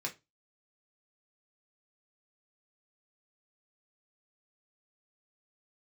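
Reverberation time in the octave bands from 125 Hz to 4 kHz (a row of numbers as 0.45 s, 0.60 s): 0.30 s, 0.25 s, 0.25 s, 0.20 s, 0.20 s, 0.20 s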